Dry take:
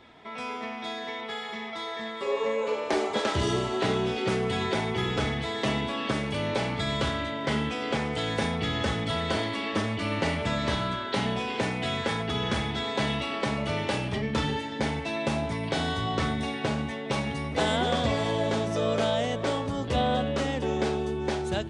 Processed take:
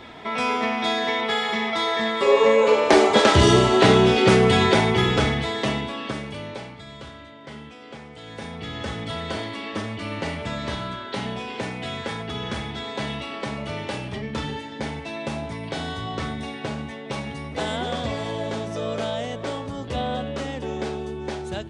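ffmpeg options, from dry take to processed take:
-af "volume=22dB,afade=t=out:st=4.45:d=1.42:silence=0.281838,afade=t=out:st=5.87:d=0.93:silence=0.237137,afade=t=in:st=8.2:d=0.83:silence=0.298538"

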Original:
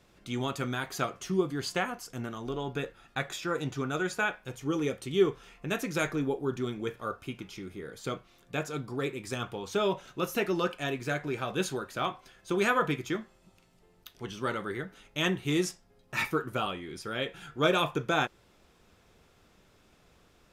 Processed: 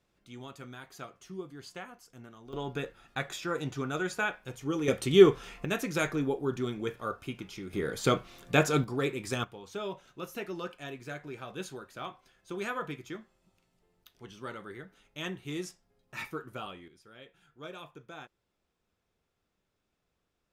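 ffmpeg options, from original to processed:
-af "asetnsamples=n=441:p=0,asendcmd='2.53 volume volume -1.5dB;4.88 volume volume 7dB;5.65 volume volume 0dB;7.73 volume volume 9dB;8.84 volume volume 2dB;9.44 volume volume -9dB;16.88 volume volume -19dB',volume=-13dB"

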